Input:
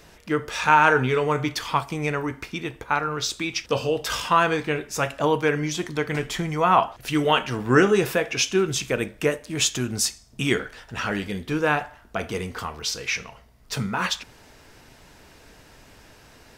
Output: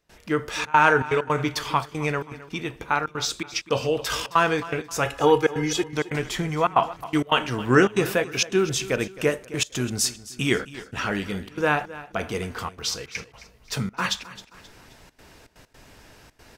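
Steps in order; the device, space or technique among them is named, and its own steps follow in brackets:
0:05.05–0:05.93: comb filter 2.4 ms, depth 95%
trance gate with a delay (gate pattern ".xxxxxx.xxx.x" 162 BPM −24 dB; repeating echo 265 ms, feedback 40%, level −17 dB)

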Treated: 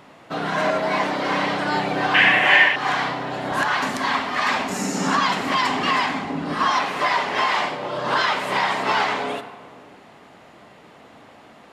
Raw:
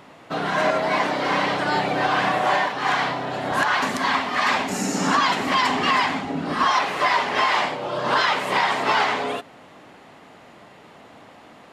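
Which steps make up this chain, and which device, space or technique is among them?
saturated reverb return (on a send at −9.5 dB: convolution reverb RT60 1.9 s, pre-delay 13 ms + soft clipping −13.5 dBFS, distortion −20 dB)
0:02.14–0:02.76: on the sum: flat-topped bell 2,300 Hz +14.5 dB 1.1 octaves
level −1 dB

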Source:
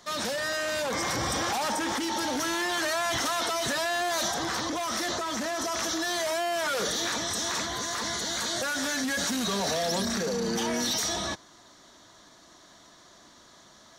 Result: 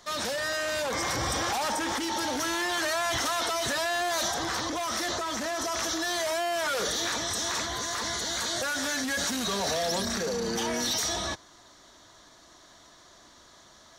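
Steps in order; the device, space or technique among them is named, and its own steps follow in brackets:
low shelf boost with a cut just above (low-shelf EQ 100 Hz +5.5 dB; parametric band 190 Hz −5 dB 1.2 octaves)

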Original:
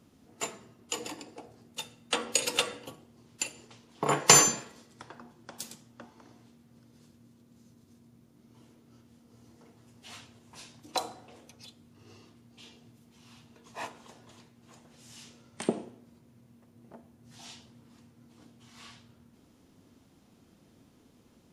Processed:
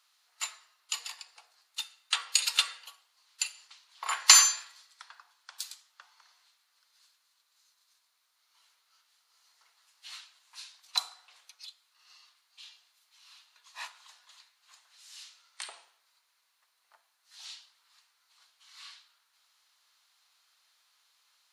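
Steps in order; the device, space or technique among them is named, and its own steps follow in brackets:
headphones lying on a table (high-pass filter 1,100 Hz 24 dB per octave; parametric band 4,200 Hz +8.5 dB 0.38 octaves)

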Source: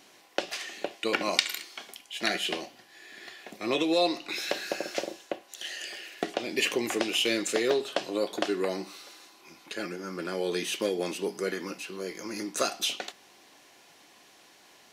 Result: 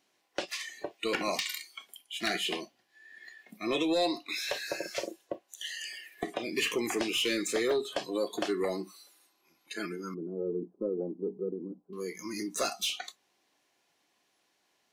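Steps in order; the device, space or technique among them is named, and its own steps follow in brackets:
0:10.14–0:11.93: Bessel low-pass filter 530 Hz, order 8
saturation between pre-emphasis and de-emphasis (high-shelf EQ 5,600 Hz +8 dB; soft clipping −21.5 dBFS, distortion −11 dB; high-shelf EQ 5,600 Hz −8 dB)
noise reduction from a noise print of the clip's start 17 dB

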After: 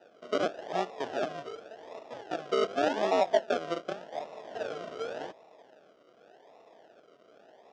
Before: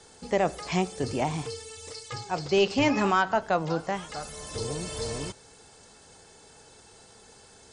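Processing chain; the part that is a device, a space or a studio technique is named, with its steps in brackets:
circuit-bent sampling toy (sample-and-hold swept by an LFO 40×, swing 60% 0.87 Hz; loudspeaker in its box 450–5,000 Hz, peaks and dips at 650 Hz +8 dB, 1,100 Hz −4 dB, 2,200 Hz −9 dB, 4,200 Hz −9 dB)
level −1.5 dB

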